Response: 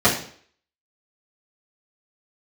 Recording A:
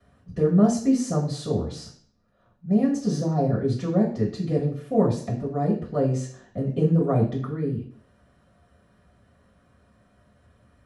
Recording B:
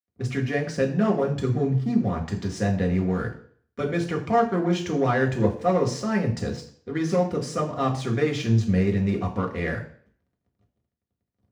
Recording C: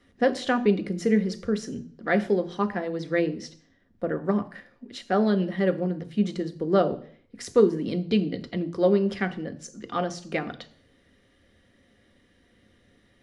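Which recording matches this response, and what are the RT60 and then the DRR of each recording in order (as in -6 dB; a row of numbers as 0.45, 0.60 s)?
A; 0.55, 0.55, 0.55 s; -10.0, -1.0, 8.0 dB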